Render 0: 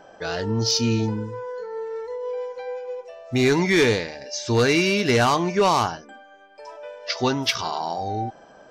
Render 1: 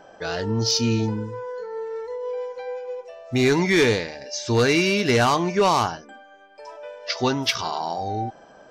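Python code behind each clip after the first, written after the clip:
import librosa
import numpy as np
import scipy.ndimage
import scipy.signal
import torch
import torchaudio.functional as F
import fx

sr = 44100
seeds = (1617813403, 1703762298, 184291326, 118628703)

y = x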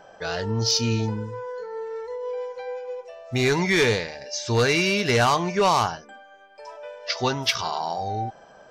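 y = fx.peak_eq(x, sr, hz=290.0, db=-7.5, octaves=0.69)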